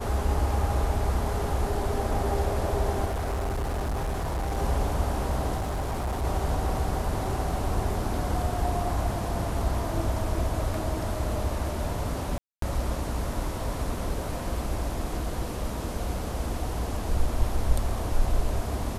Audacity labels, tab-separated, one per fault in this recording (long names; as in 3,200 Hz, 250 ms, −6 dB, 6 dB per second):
3.050000	4.580000	clipping −25.5 dBFS
5.570000	6.250000	clipping −25.5 dBFS
12.380000	12.620000	drop-out 243 ms